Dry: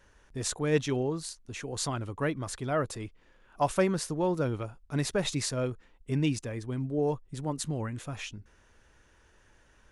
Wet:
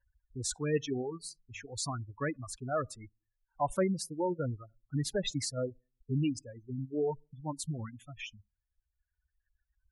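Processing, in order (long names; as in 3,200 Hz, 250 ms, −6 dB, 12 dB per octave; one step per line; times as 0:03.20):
spectral dynamics exaggerated over time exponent 1.5
on a send at −20 dB: convolution reverb RT60 0.35 s, pre-delay 36 ms
on the sum: gate on every frequency bin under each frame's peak −20 dB strong
reverb reduction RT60 1.9 s
in parallel at +1.5 dB: brickwall limiter −25.5 dBFS, peak gain reduction 10 dB
0:01.18–0:01.66: on the sum: hum removal 48.55 Hz, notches 4
level −6 dB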